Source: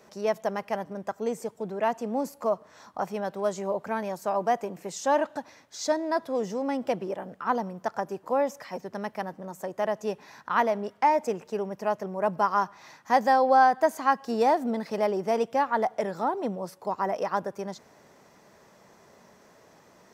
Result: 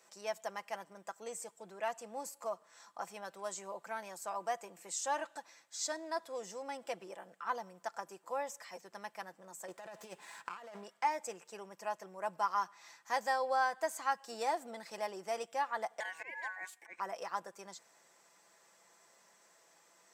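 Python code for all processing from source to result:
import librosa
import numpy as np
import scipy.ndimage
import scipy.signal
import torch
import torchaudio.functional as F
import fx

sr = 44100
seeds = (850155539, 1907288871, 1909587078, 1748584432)

y = fx.chain(x, sr, fx.over_compress(threshold_db=-34.0, ratio=-1.0),
    fx.running_max(window=5), at=(9.68, 10.84))
y = fx.chain(y, sr, fx.auto_swell(attack_ms=158.0),
    fx.ring_mod(carrier_hz=1300.0), at=(16.0, 17.0))
y = fx.highpass(y, sr, hz=1400.0, slope=6)
y = fx.peak_eq(y, sr, hz=7900.0, db=11.0, octaves=0.34)
y = y + 0.41 * np.pad(y, (int(5.9 * sr / 1000.0), 0))[:len(y)]
y = y * librosa.db_to_amplitude(-6.0)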